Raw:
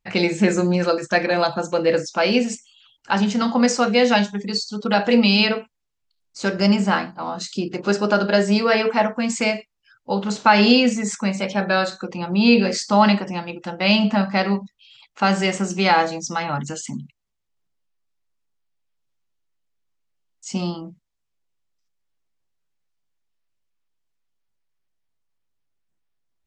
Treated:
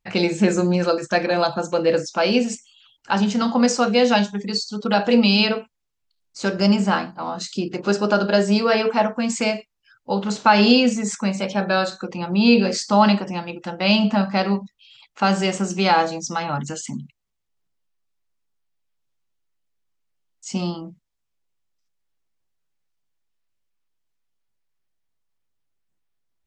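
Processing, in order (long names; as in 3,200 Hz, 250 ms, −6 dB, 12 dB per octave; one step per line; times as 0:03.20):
dynamic equaliser 2,000 Hz, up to −6 dB, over −39 dBFS, Q 3.3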